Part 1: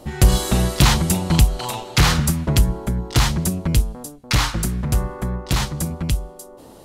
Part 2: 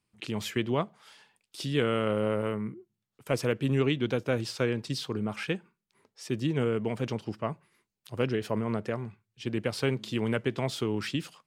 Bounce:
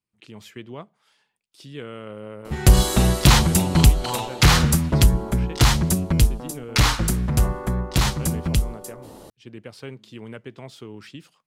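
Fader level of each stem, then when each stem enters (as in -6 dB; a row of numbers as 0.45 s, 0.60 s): +0.5 dB, -9.0 dB; 2.45 s, 0.00 s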